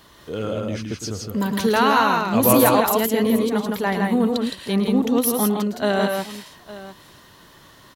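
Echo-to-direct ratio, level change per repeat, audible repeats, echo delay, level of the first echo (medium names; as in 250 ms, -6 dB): -2.0 dB, no regular repeats, 3, 109 ms, -10.0 dB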